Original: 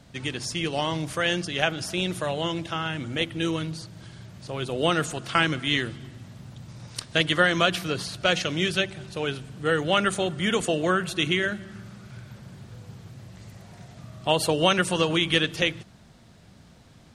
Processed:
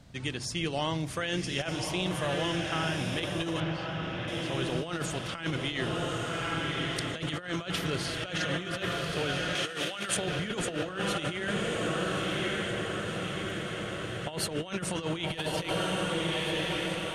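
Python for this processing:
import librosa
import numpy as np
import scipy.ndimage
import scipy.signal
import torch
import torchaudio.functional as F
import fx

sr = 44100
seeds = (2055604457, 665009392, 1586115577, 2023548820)

y = fx.low_shelf(x, sr, hz=79.0, db=7.5)
y = fx.echo_diffused(y, sr, ms=1182, feedback_pct=65, wet_db=-4.5)
y = fx.over_compress(y, sr, threshold_db=-25.0, ratio=-0.5)
y = fx.lowpass(y, sr, hz=3400.0, slope=12, at=(3.6, 4.28))
y = fx.tilt_eq(y, sr, slope=2.5, at=(9.55, 10.17))
y = y * 10.0 ** (-5.5 / 20.0)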